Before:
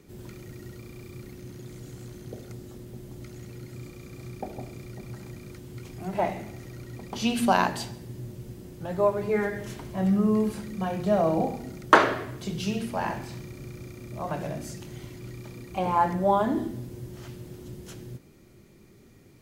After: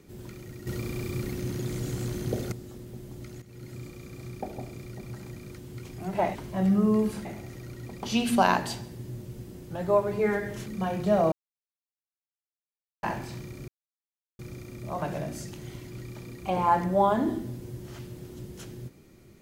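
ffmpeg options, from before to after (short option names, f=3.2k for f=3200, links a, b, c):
-filter_complex "[0:a]asplit=10[a][b][c][d][e][f][g][h][i][j];[a]atrim=end=0.672[k];[b]atrim=start=0.668:end=2.522,asetpts=PTS-STARTPTS,volume=10dB[l];[c]atrim=start=2.518:end=3.42,asetpts=PTS-STARTPTS,afade=t=out:st=0.898:d=0.004:c=hsin:silence=0.211349[m];[d]atrim=start=3.42:end=6.352,asetpts=PTS-STARTPTS,afade=t=in:d=0.27:silence=0.211349[n];[e]atrim=start=9.758:end=10.662[o];[f]atrim=start=6.348:end=9.762[p];[g]atrim=start=10.658:end=11.32,asetpts=PTS-STARTPTS,afade=t=out:st=0.658:d=0.004:c=hsin[q];[h]atrim=start=11.32:end=13.03,asetpts=PTS-STARTPTS,volume=0[r];[i]atrim=start=13.03:end=13.68,asetpts=PTS-STARTPTS,afade=t=in:d=0.004:c=hsin,afade=t=out:st=0.646:d=0.004:c=hsin,apad=pad_dur=0.71[s];[j]atrim=start=13.68,asetpts=PTS-STARTPTS,afade=t=in:d=0.004:c=hsin[t];[k][l]acrossfade=d=0.004:c1=hsin:c2=hsin[u];[m][n]concat=n=2:v=0:a=1[v];[u][v]acrossfade=d=0.004:c1=hsin:c2=hsin[w];[w][o]acrossfade=d=0.004:c1=hsin:c2=hsin[x];[x][p]acrossfade=d=0.004:c1=hsin:c2=hsin[y];[q][r][s][t]concat=n=4:v=0:a=1[z];[y][z]acrossfade=d=0.004:c1=hsin:c2=hsin"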